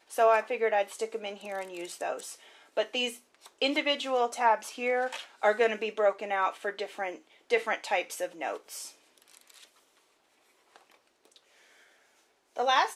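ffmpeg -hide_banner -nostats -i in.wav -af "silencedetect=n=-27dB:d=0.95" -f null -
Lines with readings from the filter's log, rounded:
silence_start: 8.54
silence_end: 12.59 | silence_duration: 4.05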